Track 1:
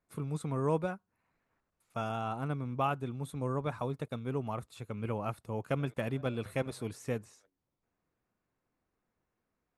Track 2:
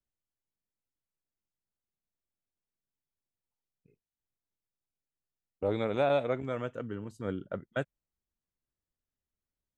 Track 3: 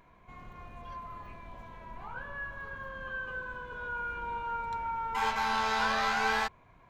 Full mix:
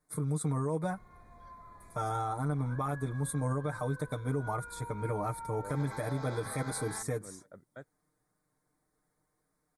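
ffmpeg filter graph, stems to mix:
ffmpeg -i stem1.wav -i stem2.wav -i stem3.wav -filter_complex "[0:a]equalizer=frequency=9400:width=1.9:gain=12.5,aecho=1:1:6.6:0.95,volume=1.5dB[link_01];[1:a]volume=-15.5dB[link_02];[2:a]alimiter=level_in=2dB:limit=-24dB:level=0:latency=1,volume=-2dB,adelay=550,volume=-8.5dB[link_03];[link_01][link_02][link_03]amix=inputs=3:normalize=0,asuperstop=centerf=2800:order=4:qfactor=2.1,alimiter=limit=-23.5dB:level=0:latency=1:release=99" out.wav

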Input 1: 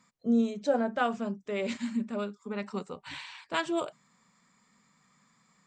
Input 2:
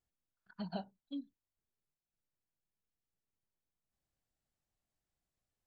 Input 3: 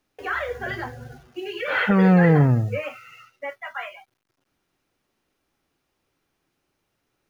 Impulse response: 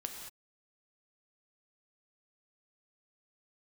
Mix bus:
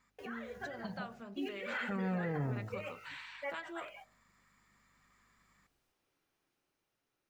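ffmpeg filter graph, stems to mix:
-filter_complex "[0:a]equalizer=frequency=1700:width=0.92:gain=9.5,acompressor=threshold=-36dB:ratio=2.5,aeval=exprs='val(0)+0.000447*(sin(2*PI*50*n/s)+sin(2*PI*2*50*n/s)/2+sin(2*PI*3*50*n/s)/3+sin(2*PI*4*50*n/s)/4+sin(2*PI*5*50*n/s)/5)':channel_layout=same,volume=-12.5dB,asplit=2[link_01][link_02];[1:a]alimiter=level_in=13dB:limit=-24dB:level=0:latency=1:release=481,volume=-13dB,adelay=250,volume=2.5dB[link_03];[2:a]lowshelf=frequency=190:gain=-5.5,volume=-9.5dB[link_04];[link_02]apad=whole_len=321516[link_05];[link_04][link_05]sidechaincompress=threshold=-55dB:ratio=5:attack=8.6:release=212[link_06];[link_01][link_03][link_06]amix=inputs=3:normalize=0,bandreject=frequency=52.47:width_type=h:width=4,bandreject=frequency=104.94:width_type=h:width=4,bandreject=frequency=157.41:width_type=h:width=4,bandreject=frequency=209.88:width_type=h:width=4,bandreject=frequency=262.35:width_type=h:width=4,bandreject=frequency=314.82:width_type=h:width=4,bandreject=frequency=367.29:width_type=h:width=4,bandreject=frequency=419.76:width_type=h:width=4,bandreject=frequency=472.23:width_type=h:width=4,bandreject=frequency=524.7:width_type=h:width=4,bandreject=frequency=577.17:width_type=h:width=4,bandreject=frequency=629.64:width_type=h:width=4,bandreject=frequency=682.11:width_type=h:width=4,bandreject=frequency=734.58:width_type=h:width=4,bandreject=frequency=787.05:width_type=h:width=4,bandreject=frequency=839.52:width_type=h:width=4,bandreject=frequency=891.99:width_type=h:width=4,dynaudnorm=framelen=360:gausssize=7:maxgain=3.5dB,alimiter=level_in=4.5dB:limit=-24dB:level=0:latency=1:release=32,volume=-4.5dB"

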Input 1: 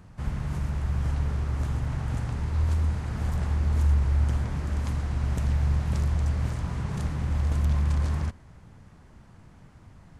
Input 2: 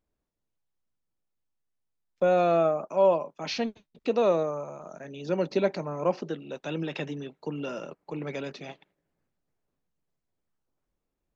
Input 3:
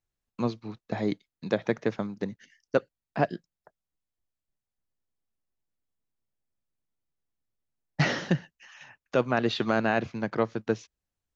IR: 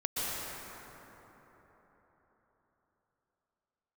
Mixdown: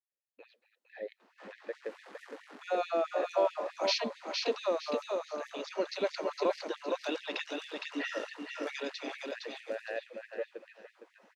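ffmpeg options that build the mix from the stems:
-filter_complex "[0:a]asoftclip=type=tanh:threshold=-27dB,flanger=delay=19.5:depth=2.1:speed=0.68,adelay=1200,volume=-2dB,asplit=2[link_01][link_02];[link_02]volume=-8dB[link_03];[1:a]acompressor=threshold=-26dB:ratio=3,adelay=400,volume=-0.5dB,asplit=2[link_04][link_05];[link_05]volume=-4dB[link_06];[2:a]asplit=3[link_07][link_08][link_09];[link_07]bandpass=frequency=530:width_type=q:width=8,volume=0dB[link_10];[link_08]bandpass=frequency=1840:width_type=q:width=8,volume=-6dB[link_11];[link_09]bandpass=frequency=2480:width_type=q:width=8,volume=-9dB[link_12];[link_10][link_11][link_12]amix=inputs=3:normalize=0,volume=0.5dB,asplit=2[link_13][link_14];[link_14]volume=-10dB[link_15];[link_01][link_13]amix=inputs=2:normalize=0,lowpass=4400,alimiter=level_in=2dB:limit=-24dB:level=0:latency=1:release=244,volume=-2dB,volume=0dB[link_16];[link_03][link_06][link_15]amix=inputs=3:normalize=0,aecho=0:1:461|922|1383|1844:1|0.27|0.0729|0.0197[link_17];[link_04][link_16][link_17]amix=inputs=3:normalize=0,adynamicequalizer=threshold=0.001:dfrequency=4200:dqfactor=1.9:tfrequency=4200:tqfactor=1.9:attack=5:release=100:ratio=0.375:range=2.5:mode=boostabove:tftype=bell,afftfilt=real='re*gte(b*sr/1024,210*pow(1800/210,0.5+0.5*sin(2*PI*4.6*pts/sr)))':imag='im*gte(b*sr/1024,210*pow(1800/210,0.5+0.5*sin(2*PI*4.6*pts/sr)))':win_size=1024:overlap=0.75"

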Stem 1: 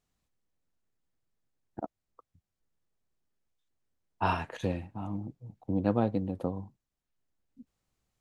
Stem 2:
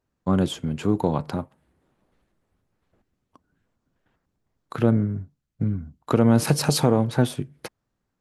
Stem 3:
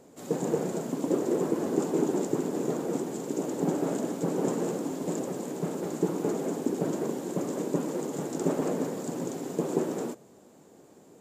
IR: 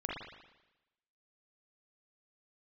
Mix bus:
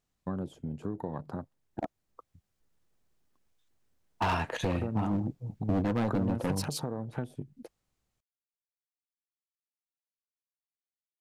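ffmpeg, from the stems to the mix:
-filter_complex "[0:a]dynaudnorm=framelen=560:gausssize=7:maxgain=9dB,alimiter=limit=-12.5dB:level=0:latency=1:release=294,volume=23dB,asoftclip=hard,volume=-23dB,volume=-1dB[link_01];[1:a]afwtdn=0.02,volume=-8.5dB,highshelf=frequency=5500:gain=7,acompressor=threshold=-31dB:ratio=6,volume=0dB[link_02];[link_01][link_02]amix=inputs=2:normalize=0"

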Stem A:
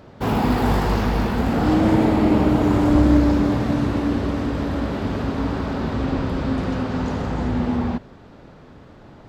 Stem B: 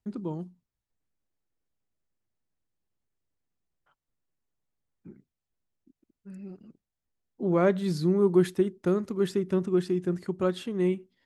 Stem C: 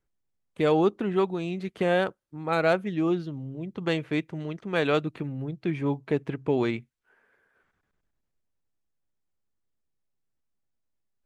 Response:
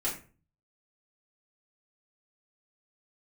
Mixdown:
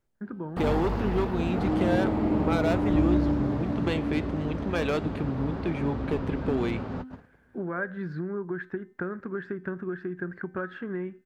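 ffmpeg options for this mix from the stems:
-filter_complex "[0:a]highshelf=frequency=3000:gain=-11.5,volume=-8.5dB[link_01];[1:a]acompressor=threshold=-28dB:ratio=6,lowpass=frequency=1600:width_type=q:width=12,adelay=150,volume=-1.5dB[link_02];[2:a]volume=2dB,asplit=2[link_03][link_04];[link_04]apad=whole_len=409654[link_05];[link_01][link_05]sidechaingate=range=-33dB:threshold=-59dB:ratio=16:detection=peak[link_06];[link_02][link_03]amix=inputs=2:normalize=0,volume=17dB,asoftclip=hard,volume=-17dB,acompressor=threshold=-27dB:ratio=2.5,volume=0dB[link_07];[link_06][link_07]amix=inputs=2:normalize=0,bandreject=frequency=257.2:width_type=h:width=4,bandreject=frequency=514.4:width_type=h:width=4,bandreject=frequency=771.6:width_type=h:width=4,bandreject=frequency=1028.8:width_type=h:width=4,bandreject=frequency=1286:width_type=h:width=4,bandreject=frequency=1543.2:width_type=h:width=4,bandreject=frequency=1800.4:width_type=h:width=4,bandreject=frequency=2057.6:width_type=h:width=4,bandreject=frequency=2314.8:width_type=h:width=4,bandreject=frequency=2572:width_type=h:width=4,bandreject=frequency=2829.2:width_type=h:width=4,bandreject=frequency=3086.4:width_type=h:width=4,bandreject=frequency=3343.6:width_type=h:width=4,bandreject=frequency=3600.8:width_type=h:width=4,bandreject=frequency=3858:width_type=h:width=4,bandreject=frequency=4115.2:width_type=h:width=4,bandreject=frequency=4372.4:width_type=h:width=4,bandreject=frequency=4629.6:width_type=h:width=4,bandreject=frequency=4886.8:width_type=h:width=4,bandreject=frequency=5144:width_type=h:width=4,bandreject=frequency=5401.2:width_type=h:width=4,bandreject=frequency=5658.4:width_type=h:width=4,bandreject=frequency=5915.6:width_type=h:width=4,bandreject=frequency=6172.8:width_type=h:width=4,bandreject=frequency=6430:width_type=h:width=4,bandreject=frequency=6687.2:width_type=h:width=4,bandreject=frequency=6944.4:width_type=h:width=4,bandreject=frequency=7201.6:width_type=h:width=4,bandreject=frequency=7458.8:width_type=h:width=4,bandreject=frequency=7716:width_type=h:width=4,bandreject=frequency=7973.2:width_type=h:width=4,bandreject=frequency=8230.4:width_type=h:width=4,bandreject=frequency=8487.6:width_type=h:width=4,bandreject=frequency=8744.8:width_type=h:width=4,bandreject=frequency=9002:width_type=h:width=4"

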